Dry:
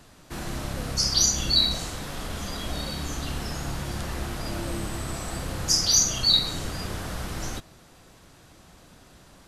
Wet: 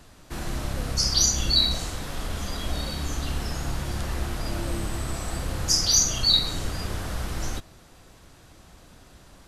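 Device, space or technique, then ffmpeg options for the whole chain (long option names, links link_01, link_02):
low shelf boost with a cut just above: -af "lowshelf=frequency=100:gain=6,equalizer=frequency=160:width_type=o:width=0.98:gain=-2.5"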